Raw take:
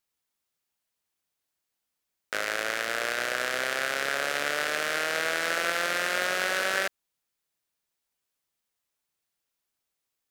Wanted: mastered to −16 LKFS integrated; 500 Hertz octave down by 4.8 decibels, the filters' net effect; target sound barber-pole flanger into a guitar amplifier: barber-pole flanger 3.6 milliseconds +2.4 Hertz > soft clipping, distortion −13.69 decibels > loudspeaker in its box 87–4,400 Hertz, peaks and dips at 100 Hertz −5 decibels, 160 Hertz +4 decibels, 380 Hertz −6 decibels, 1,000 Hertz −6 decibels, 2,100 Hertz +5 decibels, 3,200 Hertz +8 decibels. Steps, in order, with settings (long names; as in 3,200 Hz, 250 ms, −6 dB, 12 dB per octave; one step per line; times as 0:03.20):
parametric band 500 Hz −4.5 dB
barber-pole flanger 3.6 ms +2.4 Hz
soft clipping −25 dBFS
loudspeaker in its box 87–4,400 Hz, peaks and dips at 100 Hz −5 dB, 160 Hz +4 dB, 380 Hz −6 dB, 1,000 Hz −6 dB, 2,100 Hz +5 dB, 3,200 Hz +8 dB
level +15 dB